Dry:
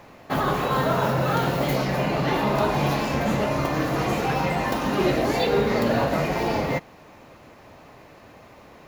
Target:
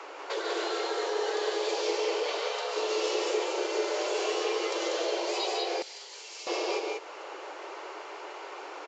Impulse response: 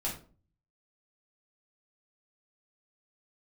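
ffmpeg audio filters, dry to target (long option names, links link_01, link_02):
-filter_complex "[0:a]acompressor=threshold=-25dB:ratio=8,asettb=1/sr,asplit=3[link_01][link_02][link_03];[link_01]atrim=end=2.204[link_04];[link_02]atrim=start=2.2:end=2.76,asetpts=PTS-STARTPTS,afade=type=in:duration=0.004:curve=qsin,afade=type=out:start_time=0.556:duration=0.004:curve=qsin,highpass=190[link_05];[link_03]atrim=start=2.756[link_06];[link_04][link_05]acrossfade=duration=0.004:curve1=hsin:curve2=qsin[link_07];[link_07][link_06]acrossfade=duration=0.004:curve1=qsin:curve2=hsin,afreqshift=290,acrusher=bits=10:mix=0:aa=0.000001,acrossover=split=430|3000[link_08][link_09][link_10];[link_09]acompressor=threshold=-47dB:ratio=6[link_11];[link_08][link_11][link_10]amix=inputs=3:normalize=0,asplit=2[link_12][link_13];[link_13]aecho=0:1:145.8|192.4:0.501|0.708[link_14];[link_12][link_14]amix=inputs=2:normalize=0,aresample=16000,aresample=44100,asettb=1/sr,asplit=3[link_15][link_16][link_17];[link_15]atrim=end=5.824[link_18];[link_16]atrim=start=5.82:end=6.47,asetpts=PTS-STARTPTS,afade=type=in:duration=0.004:curve=qsin,afade=type=out:start_time=0.646:duration=0.004:curve=qsin,aderivative[link_19];[link_17]atrim=start=6.466[link_20];[link_18][link_19]acrossfade=duration=0.004:curve1=hsin:curve2=qsin[link_21];[link_21][link_20]acrossfade=duration=0.004:curve1=qsin:curve2=hsin,volume=5dB"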